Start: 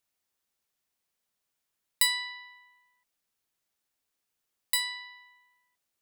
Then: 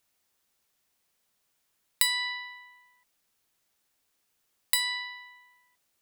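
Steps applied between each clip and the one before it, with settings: compression 3:1, threshold -31 dBFS, peak gain reduction 9.5 dB; trim +7.5 dB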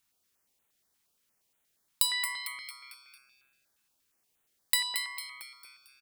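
on a send: frequency-shifting echo 225 ms, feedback 47%, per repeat +130 Hz, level -8 dB; on the sum: step-sequenced notch 8.5 Hz 550–5000 Hz; trim -1 dB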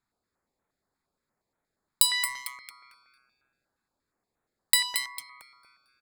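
local Wiener filter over 15 samples; peaking EQ 7.3 kHz +3 dB 1.4 oct; trim +4 dB

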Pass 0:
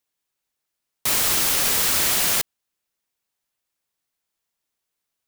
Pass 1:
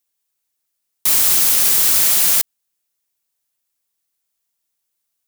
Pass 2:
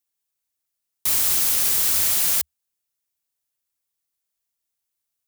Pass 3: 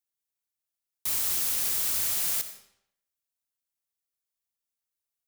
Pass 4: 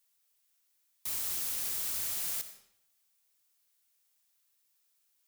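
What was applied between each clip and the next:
treble shelf 5 kHz +11 dB; trim -2.5 dB
peaking EQ 74 Hz +9.5 dB 0.55 oct; trim -6 dB
reverberation RT60 0.75 s, pre-delay 45 ms, DRR 10 dB; trim -8 dB
added noise blue -67 dBFS; trim -7 dB

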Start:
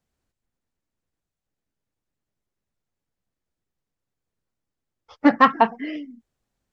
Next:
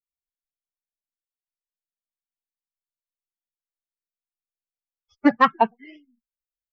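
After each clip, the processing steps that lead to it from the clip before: expander on every frequency bin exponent 2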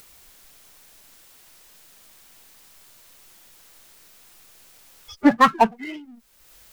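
power-law waveshaper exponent 0.7; upward compressor, threshold -35 dBFS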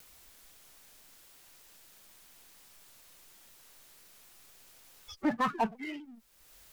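peak limiter -14.5 dBFS, peak gain reduction 10.5 dB; vibrato with a chosen wave saw down 4 Hz, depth 100 cents; trim -6 dB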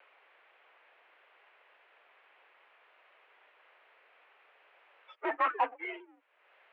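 in parallel at -9 dB: integer overflow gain 26.5 dB; on the sum: mistuned SSB +58 Hz 390–2600 Hz; trim +1.5 dB

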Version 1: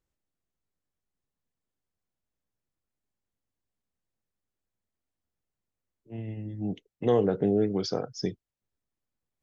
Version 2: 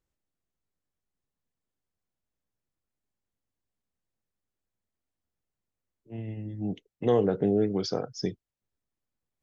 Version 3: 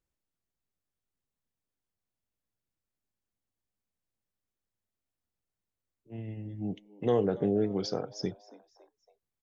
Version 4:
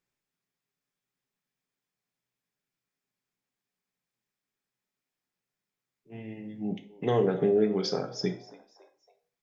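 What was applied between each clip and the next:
no audible change
frequency-shifting echo 279 ms, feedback 47%, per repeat +100 Hz, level -21 dB; trim -3 dB
reverberation RT60 0.40 s, pre-delay 3 ms, DRR 5.5 dB

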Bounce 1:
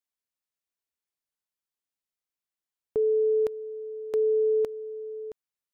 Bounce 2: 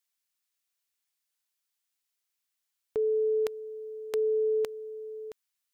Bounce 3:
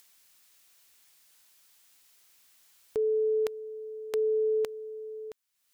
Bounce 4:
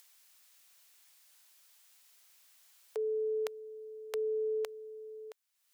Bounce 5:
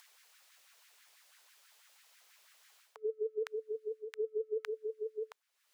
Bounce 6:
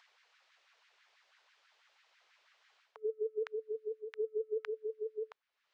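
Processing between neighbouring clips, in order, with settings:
tilt shelf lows -7.5 dB; trim +1.5 dB
upward compressor, threshold -44 dBFS
high-pass 480 Hz 24 dB/octave; trim -1.5 dB
treble shelf 7 kHz -9.5 dB; reverse; compression 12:1, threshold -42 dBFS, peak gain reduction 10.5 dB; reverse; LFO high-pass sine 6.1 Hz 350–1800 Hz; trim +4 dB
Gaussian low-pass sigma 1.9 samples

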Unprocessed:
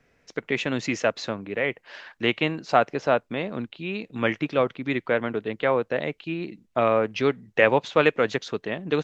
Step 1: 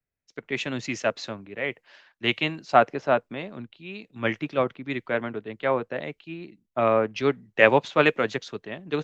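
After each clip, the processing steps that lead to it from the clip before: band-stop 480 Hz, Q 12; three bands expanded up and down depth 70%; trim -1.5 dB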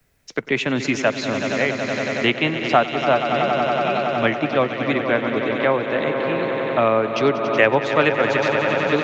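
echo with a slow build-up 93 ms, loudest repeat 5, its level -13 dB; three bands compressed up and down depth 70%; trim +4.5 dB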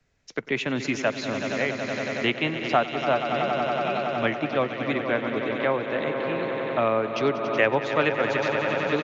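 resampled via 16 kHz; trim -5.5 dB

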